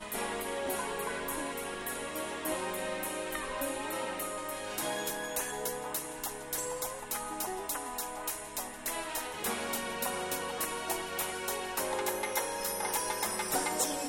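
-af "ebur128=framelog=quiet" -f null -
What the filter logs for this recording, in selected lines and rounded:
Integrated loudness:
  I:         -34.6 LUFS
  Threshold: -44.5 LUFS
Loudness range:
  LRA:         2.6 LU
  Threshold: -54.9 LUFS
  LRA low:   -35.8 LUFS
  LRA high:  -33.2 LUFS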